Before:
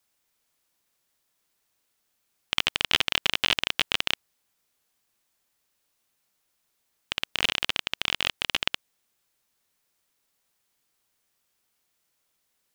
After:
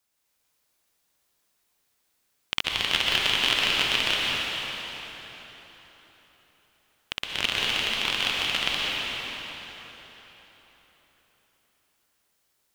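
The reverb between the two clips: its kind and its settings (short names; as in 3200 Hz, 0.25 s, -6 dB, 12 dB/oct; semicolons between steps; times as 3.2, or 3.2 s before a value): plate-style reverb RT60 4.2 s, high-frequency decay 0.8×, pre-delay 0.11 s, DRR -4 dB; gain -2.5 dB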